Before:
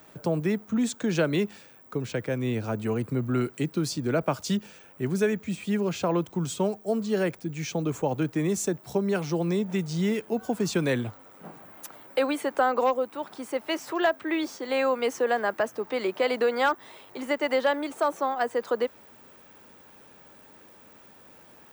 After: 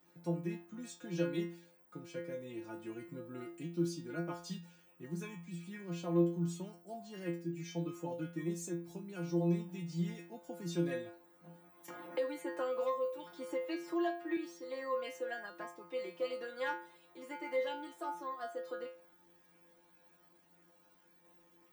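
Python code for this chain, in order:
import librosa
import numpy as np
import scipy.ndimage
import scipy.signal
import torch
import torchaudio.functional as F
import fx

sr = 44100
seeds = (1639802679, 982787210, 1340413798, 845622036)

y = fx.peak_eq(x, sr, hz=280.0, db=10.0, octaves=0.47)
y = fx.stiff_resonator(y, sr, f0_hz=170.0, decay_s=0.45, stiffness=0.002)
y = fx.band_squash(y, sr, depth_pct=70, at=(11.88, 14.37))
y = y * 10.0 ** (-1.5 / 20.0)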